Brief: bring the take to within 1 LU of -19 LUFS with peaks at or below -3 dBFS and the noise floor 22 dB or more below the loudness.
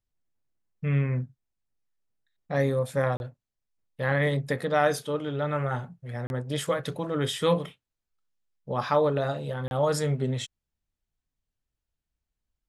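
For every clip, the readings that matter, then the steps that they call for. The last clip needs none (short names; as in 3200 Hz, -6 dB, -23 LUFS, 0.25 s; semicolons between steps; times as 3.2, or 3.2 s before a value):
dropouts 3; longest dropout 31 ms; loudness -28.0 LUFS; peak -9.5 dBFS; loudness target -19.0 LUFS
-> interpolate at 3.17/6.27/9.68, 31 ms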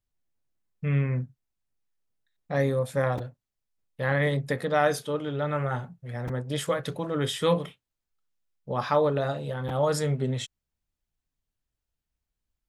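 dropouts 0; loudness -28.0 LUFS; peak -9.5 dBFS; loudness target -19.0 LUFS
-> gain +9 dB; limiter -3 dBFS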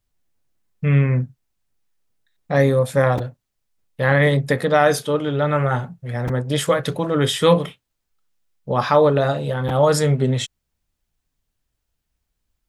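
loudness -19.0 LUFS; peak -3.0 dBFS; noise floor -78 dBFS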